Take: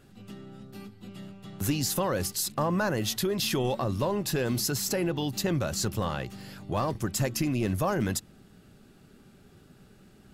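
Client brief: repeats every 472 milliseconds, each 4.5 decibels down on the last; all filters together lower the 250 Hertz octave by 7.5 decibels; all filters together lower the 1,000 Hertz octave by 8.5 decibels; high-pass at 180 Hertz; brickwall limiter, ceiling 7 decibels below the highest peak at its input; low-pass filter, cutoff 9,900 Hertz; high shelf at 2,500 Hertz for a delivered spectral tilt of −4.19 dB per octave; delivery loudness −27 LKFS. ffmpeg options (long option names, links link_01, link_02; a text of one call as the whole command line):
ffmpeg -i in.wav -af "highpass=180,lowpass=9900,equalizer=frequency=250:width_type=o:gain=-8,equalizer=frequency=1000:width_type=o:gain=-9,highshelf=frequency=2500:gain=-8,alimiter=level_in=4.5dB:limit=-24dB:level=0:latency=1,volume=-4.5dB,aecho=1:1:472|944|1416|1888|2360|2832|3304|3776|4248:0.596|0.357|0.214|0.129|0.0772|0.0463|0.0278|0.0167|0.01,volume=10dB" out.wav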